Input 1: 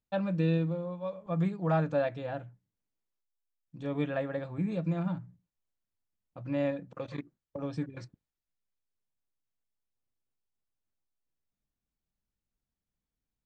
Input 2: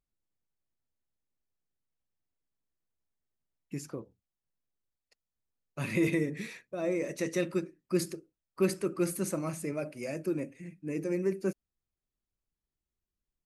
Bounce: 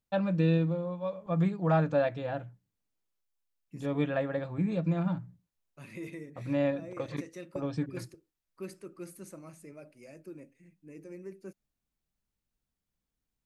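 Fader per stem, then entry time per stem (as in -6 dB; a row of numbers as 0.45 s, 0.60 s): +2.0 dB, -14.0 dB; 0.00 s, 0.00 s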